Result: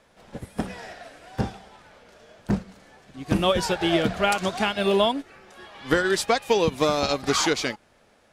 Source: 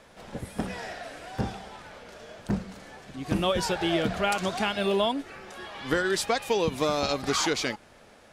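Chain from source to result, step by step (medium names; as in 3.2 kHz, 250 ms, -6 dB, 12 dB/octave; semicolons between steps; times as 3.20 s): upward expansion 1.5:1, over -44 dBFS; trim +5.5 dB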